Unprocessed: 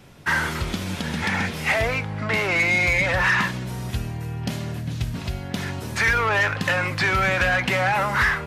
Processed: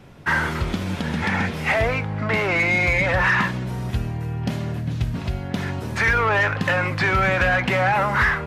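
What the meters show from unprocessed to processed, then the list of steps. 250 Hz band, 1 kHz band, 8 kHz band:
+3.0 dB, +2.0 dB, −5.5 dB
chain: high-shelf EQ 3,200 Hz −10 dB
level +3 dB

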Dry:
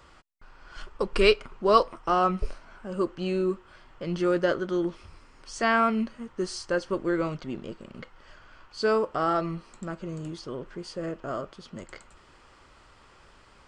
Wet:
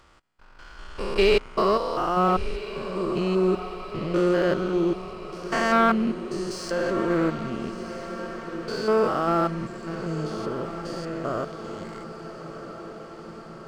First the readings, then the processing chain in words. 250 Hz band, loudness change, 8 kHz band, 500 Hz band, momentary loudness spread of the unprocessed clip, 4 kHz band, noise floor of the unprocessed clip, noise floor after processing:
+4.5 dB, +2.0 dB, +1.5 dB, +3.0 dB, 21 LU, +1.0 dB, −56 dBFS, −44 dBFS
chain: spectrum averaged block by block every 200 ms
leveller curve on the samples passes 1
in parallel at −10 dB: dead-zone distortion −43 dBFS
on the sum: feedback delay with all-pass diffusion 1,356 ms, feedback 67%, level −12 dB

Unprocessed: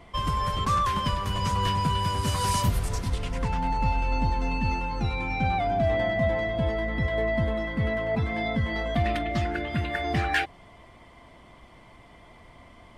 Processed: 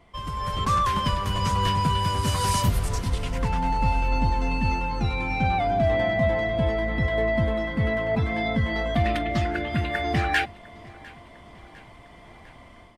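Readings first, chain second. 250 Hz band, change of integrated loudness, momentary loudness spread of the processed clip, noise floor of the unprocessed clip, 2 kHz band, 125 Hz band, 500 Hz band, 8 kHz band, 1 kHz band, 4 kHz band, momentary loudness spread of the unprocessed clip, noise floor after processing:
+2.5 dB, +2.0 dB, 5 LU, −52 dBFS, +2.5 dB, +2.0 dB, +2.5 dB, +2.0 dB, +2.0 dB, +2.0 dB, 4 LU, −48 dBFS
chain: automatic gain control gain up to 9 dB
repeating echo 703 ms, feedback 58%, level −23 dB
level −6.5 dB

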